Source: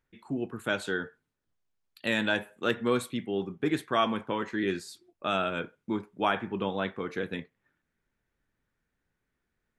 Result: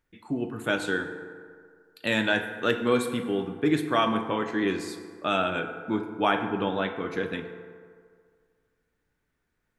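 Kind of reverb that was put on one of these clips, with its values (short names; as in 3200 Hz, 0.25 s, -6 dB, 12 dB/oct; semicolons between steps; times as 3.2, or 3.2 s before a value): FDN reverb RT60 2 s, low-frequency decay 0.85×, high-frequency decay 0.45×, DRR 6 dB; gain +2.5 dB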